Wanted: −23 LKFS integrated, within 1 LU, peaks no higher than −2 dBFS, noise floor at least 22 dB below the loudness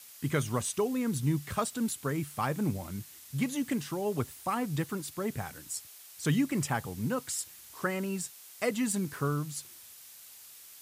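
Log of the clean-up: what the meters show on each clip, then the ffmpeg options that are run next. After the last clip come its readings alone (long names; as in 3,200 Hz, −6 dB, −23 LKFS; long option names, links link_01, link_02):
background noise floor −52 dBFS; target noise floor −55 dBFS; integrated loudness −33.0 LKFS; sample peak −17.0 dBFS; target loudness −23.0 LKFS
→ -af "afftdn=noise_reduction=6:noise_floor=-52"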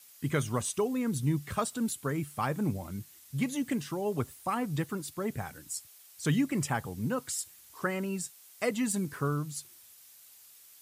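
background noise floor −56 dBFS; integrated loudness −33.0 LKFS; sample peak −17.0 dBFS; target loudness −23.0 LKFS
→ -af "volume=10dB"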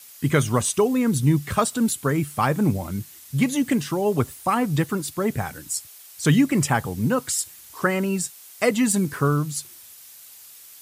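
integrated loudness −23.0 LKFS; sample peak −7.0 dBFS; background noise floor −46 dBFS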